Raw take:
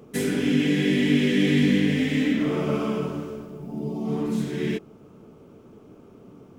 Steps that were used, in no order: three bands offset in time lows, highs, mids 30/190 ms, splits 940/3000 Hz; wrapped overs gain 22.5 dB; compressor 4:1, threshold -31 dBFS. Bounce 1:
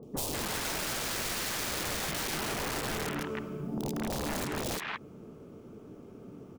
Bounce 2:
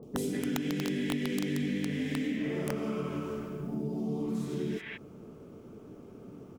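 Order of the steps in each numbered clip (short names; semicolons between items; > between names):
wrapped overs > three bands offset in time > compressor; three bands offset in time > compressor > wrapped overs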